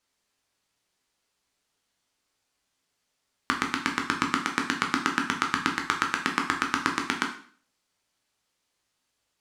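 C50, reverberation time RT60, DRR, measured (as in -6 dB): 8.5 dB, 0.50 s, 1.5 dB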